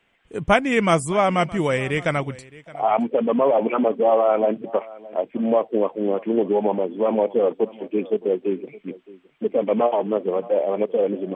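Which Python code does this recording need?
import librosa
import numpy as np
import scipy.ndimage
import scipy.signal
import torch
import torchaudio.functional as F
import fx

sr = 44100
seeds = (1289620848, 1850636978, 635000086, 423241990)

y = fx.fix_echo_inverse(x, sr, delay_ms=617, level_db=-20.5)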